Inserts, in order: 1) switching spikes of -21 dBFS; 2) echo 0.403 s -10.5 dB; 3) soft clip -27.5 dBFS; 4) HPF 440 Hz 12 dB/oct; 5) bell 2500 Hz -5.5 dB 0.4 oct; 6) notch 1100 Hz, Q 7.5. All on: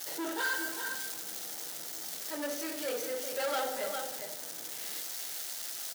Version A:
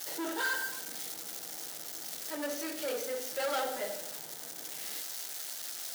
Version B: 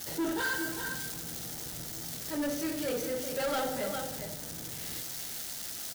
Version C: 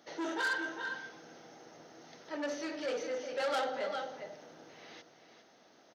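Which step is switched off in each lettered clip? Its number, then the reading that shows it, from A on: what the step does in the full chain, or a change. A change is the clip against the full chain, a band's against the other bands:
2, momentary loudness spread change +1 LU; 4, 250 Hz band +7.5 dB; 1, distortion -2 dB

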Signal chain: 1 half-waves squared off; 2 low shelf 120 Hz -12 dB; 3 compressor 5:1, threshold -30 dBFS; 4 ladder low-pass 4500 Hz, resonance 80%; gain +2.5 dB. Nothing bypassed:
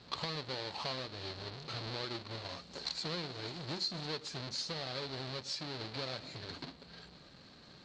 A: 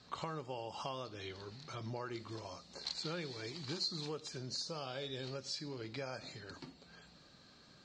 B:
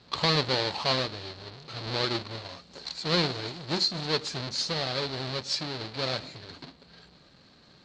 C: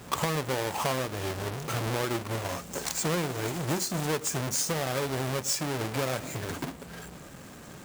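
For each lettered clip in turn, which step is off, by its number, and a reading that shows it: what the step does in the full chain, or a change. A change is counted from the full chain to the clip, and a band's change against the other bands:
1, distortion -5 dB; 3, mean gain reduction 6.0 dB; 4, 4 kHz band -10.5 dB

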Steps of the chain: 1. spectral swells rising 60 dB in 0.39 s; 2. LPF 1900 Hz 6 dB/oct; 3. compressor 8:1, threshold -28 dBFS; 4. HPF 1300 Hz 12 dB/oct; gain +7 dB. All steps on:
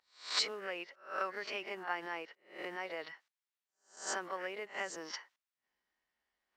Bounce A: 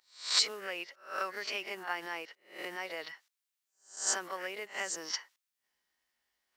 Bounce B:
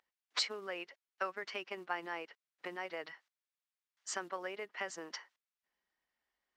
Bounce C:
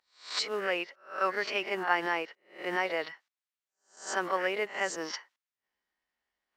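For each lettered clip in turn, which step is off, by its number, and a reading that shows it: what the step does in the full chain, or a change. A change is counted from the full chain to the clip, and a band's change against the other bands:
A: 2, 8 kHz band +9.5 dB; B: 1, 125 Hz band +1.5 dB; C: 3, mean gain reduction 4.5 dB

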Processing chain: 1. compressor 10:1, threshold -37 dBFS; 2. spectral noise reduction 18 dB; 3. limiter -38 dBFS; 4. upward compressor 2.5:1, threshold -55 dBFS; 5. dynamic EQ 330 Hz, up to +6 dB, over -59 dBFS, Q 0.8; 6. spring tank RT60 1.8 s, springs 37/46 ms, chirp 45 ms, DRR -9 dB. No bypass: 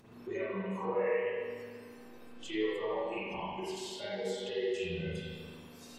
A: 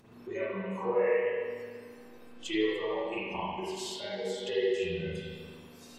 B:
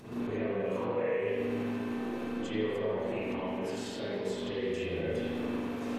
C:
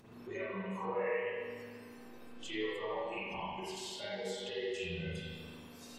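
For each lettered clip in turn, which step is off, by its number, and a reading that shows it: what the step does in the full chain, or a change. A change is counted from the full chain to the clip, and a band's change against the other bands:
3, 125 Hz band -3.0 dB; 2, 250 Hz band +6.5 dB; 5, momentary loudness spread change -3 LU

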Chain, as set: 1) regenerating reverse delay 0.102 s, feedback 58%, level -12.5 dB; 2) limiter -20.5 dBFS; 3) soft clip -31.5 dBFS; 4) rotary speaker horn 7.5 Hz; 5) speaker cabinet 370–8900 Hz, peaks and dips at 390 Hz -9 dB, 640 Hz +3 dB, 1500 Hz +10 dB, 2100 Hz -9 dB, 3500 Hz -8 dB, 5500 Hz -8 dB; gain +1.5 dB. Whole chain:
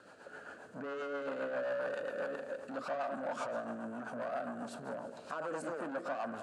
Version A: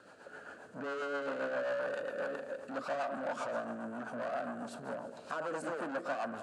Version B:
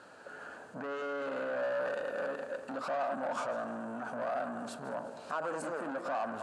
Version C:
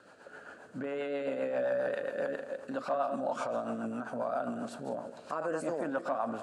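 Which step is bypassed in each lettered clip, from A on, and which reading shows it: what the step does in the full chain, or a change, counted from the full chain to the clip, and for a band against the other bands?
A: 2, mean gain reduction 2.5 dB; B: 4, 1 kHz band +1.5 dB; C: 3, distortion -9 dB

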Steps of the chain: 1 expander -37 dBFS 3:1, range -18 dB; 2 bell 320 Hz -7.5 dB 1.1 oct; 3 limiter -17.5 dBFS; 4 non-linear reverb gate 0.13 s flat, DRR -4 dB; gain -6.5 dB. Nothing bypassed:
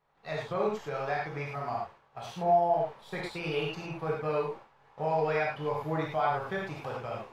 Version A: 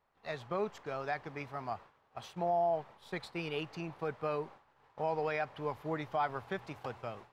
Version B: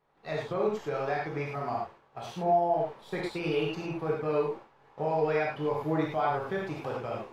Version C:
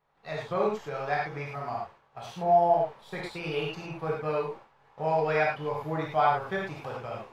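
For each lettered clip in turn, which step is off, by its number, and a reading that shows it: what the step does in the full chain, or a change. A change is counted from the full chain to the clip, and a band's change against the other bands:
4, crest factor change -2.5 dB; 2, 250 Hz band +5.0 dB; 3, crest factor change +2.0 dB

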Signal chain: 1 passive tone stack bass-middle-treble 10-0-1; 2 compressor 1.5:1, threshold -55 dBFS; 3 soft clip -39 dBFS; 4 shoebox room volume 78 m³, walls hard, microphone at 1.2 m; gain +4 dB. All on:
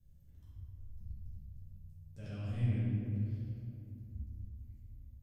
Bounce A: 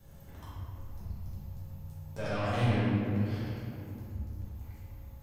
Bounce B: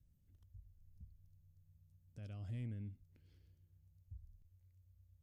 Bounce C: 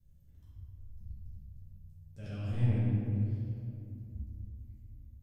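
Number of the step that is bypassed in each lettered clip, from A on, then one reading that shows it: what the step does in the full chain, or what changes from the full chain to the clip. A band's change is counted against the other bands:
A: 1, 125 Hz band -13.5 dB; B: 4, echo-to-direct 11.0 dB to none; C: 2, momentary loudness spread change +3 LU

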